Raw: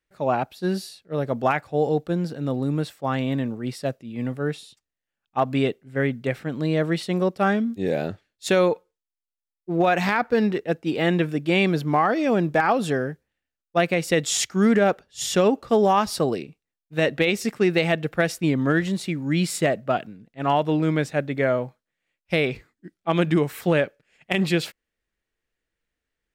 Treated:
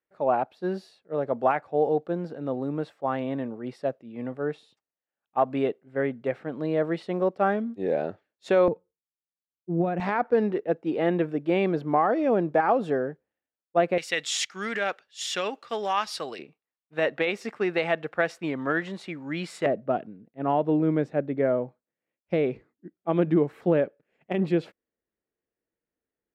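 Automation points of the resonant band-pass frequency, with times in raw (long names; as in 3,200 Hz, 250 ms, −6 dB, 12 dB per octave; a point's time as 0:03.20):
resonant band-pass, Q 0.76
640 Hz
from 0:08.68 170 Hz
from 0:10.00 540 Hz
from 0:13.98 2,500 Hz
from 0:16.39 1,000 Hz
from 0:19.66 370 Hz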